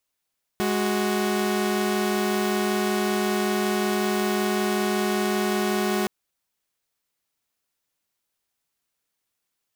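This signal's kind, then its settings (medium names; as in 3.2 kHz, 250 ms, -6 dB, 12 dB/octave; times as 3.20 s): chord G#3/F#4 saw, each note -22 dBFS 5.47 s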